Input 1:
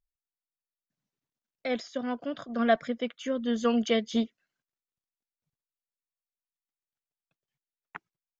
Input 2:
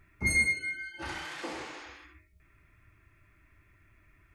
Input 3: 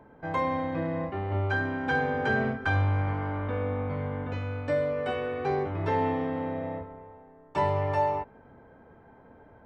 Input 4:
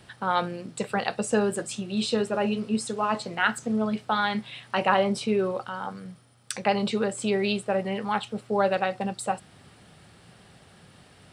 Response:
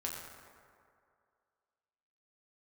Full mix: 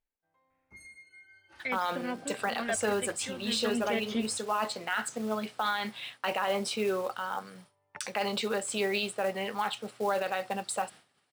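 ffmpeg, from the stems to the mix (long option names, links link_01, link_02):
-filter_complex "[0:a]equalizer=frequency=2200:width=1.3:gain=12,aphaser=in_gain=1:out_gain=1:delay=1.6:decay=0.5:speed=0.49:type=sinusoidal,volume=-10.5dB,asplit=2[link_01][link_02];[1:a]adelay=500,volume=-17dB[link_03];[2:a]volume=-13.5dB[link_04];[3:a]agate=range=-33dB:threshold=-40dB:ratio=3:detection=peak,highpass=frequency=680:poles=1,acrusher=bits=5:mode=log:mix=0:aa=0.000001,adelay=1500,volume=1dB[link_05];[link_02]apad=whole_len=425589[link_06];[link_04][link_06]sidechaingate=range=-30dB:threshold=-47dB:ratio=16:detection=peak[link_07];[link_03][link_07]amix=inputs=2:normalize=0,lowshelf=frequency=460:gain=-9,acompressor=threshold=-50dB:ratio=5,volume=0dB[link_08];[link_01][link_05][link_08]amix=inputs=3:normalize=0,alimiter=limit=-20dB:level=0:latency=1:release=18"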